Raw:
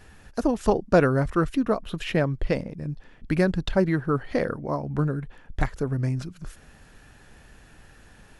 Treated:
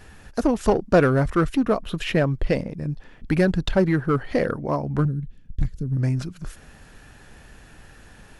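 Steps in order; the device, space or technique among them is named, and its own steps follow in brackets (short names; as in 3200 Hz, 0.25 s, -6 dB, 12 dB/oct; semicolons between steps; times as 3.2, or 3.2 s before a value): 5.05–5.97 EQ curve 190 Hz 0 dB, 880 Hz -29 dB, 3900 Hz -11 dB; parallel distortion (in parallel at -5 dB: hard clip -21.5 dBFS, distortion -8 dB)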